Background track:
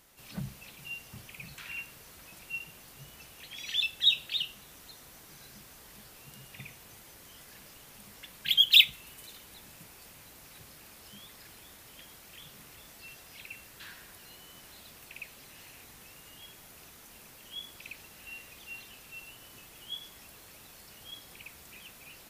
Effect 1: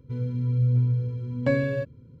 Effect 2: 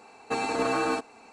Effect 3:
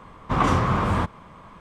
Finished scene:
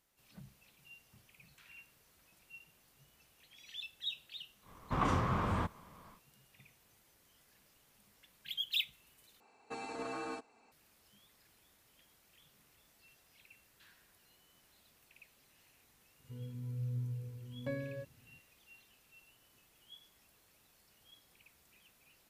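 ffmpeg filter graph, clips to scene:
-filter_complex "[0:a]volume=0.158,asplit=2[s0][s1];[s0]atrim=end=9.404[s2];[2:a]atrim=end=1.32,asetpts=PTS-STARTPTS,volume=0.178[s3];[s1]atrim=start=10.716[s4];[3:a]atrim=end=1.6,asetpts=PTS-STARTPTS,volume=0.266,afade=t=in:d=0.1,afade=t=out:st=1.5:d=0.1,adelay=203301S[s5];[1:a]atrim=end=2.2,asetpts=PTS-STARTPTS,volume=0.15,afade=t=in:d=0.004:c=hsin,afade=t=out:st=2.196:d=0.004:c=hsin,adelay=714420S[s6];[s2][s3]acrossfade=d=0.004:c1=hsin:c2=hsin[s7];[s7][s4]acrossfade=d=0.004:c1=hsin:c2=hsin[s8];[s8][s5][s6]amix=inputs=3:normalize=0"

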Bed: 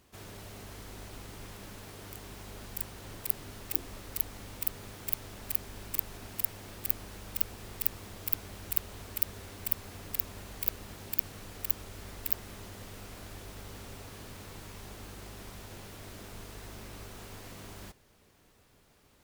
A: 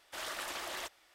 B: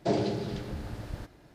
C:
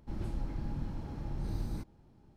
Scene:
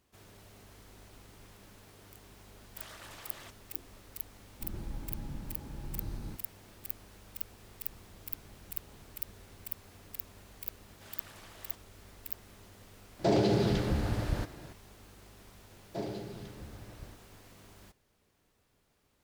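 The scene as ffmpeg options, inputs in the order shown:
-filter_complex "[1:a]asplit=2[s0][s1];[3:a]asplit=2[s2][s3];[2:a]asplit=2[s4][s5];[0:a]volume=0.355[s6];[s2]bandreject=f=710:w=12[s7];[s3]acompressor=threshold=0.0112:ratio=6:attack=3.2:release=140:knee=1:detection=peak[s8];[s4]alimiter=level_in=15.8:limit=0.891:release=50:level=0:latency=1[s9];[s0]atrim=end=1.14,asetpts=PTS-STARTPTS,volume=0.316,afade=t=in:d=0.004:c=hsin,afade=t=out:st=1.136:d=0.004:c=hsin,adelay=2630[s10];[s7]atrim=end=2.36,asetpts=PTS-STARTPTS,volume=0.631,afade=t=in:d=0.004:c=hsin,afade=t=out:st=2.356:d=0.004:c=hsin,adelay=199773S[s11];[s8]atrim=end=2.36,asetpts=PTS-STARTPTS,volume=0.178,afade=t=in:d=0.004:c=hsin,afade=t=out:st=2.356:d=0.004:c=hsin,adelay=7800[s12];[s1]atrim=end=1.14,asetpts=PTS-STARTPTS,volume=0.2,afade=t=in:d=0.004:c=hsin,afade=t=out:st=1.136:d=0.004:c=hsin,adelay=10880[s13];[s9]atrim=end=1.54,asetpts=PTS-STARTPTS,volume=0.141,afade=t=in:d=0.004:c=hsin,afade=t=out:st=1.536:d=0.004:c=hsin,adelay=13190[s14];[s5]atrim=end=1.54,asetpts=PTS-STARTPTS,volume=0.299,afade=t=in:d=0.004:c=hsin,afade=t=out:st=1.536:d=0.004:c=hsin,adelay=15890[s15];[s6][s10][s11][s12][s13][s14][s15]amix=inputs=7:normalize=0"

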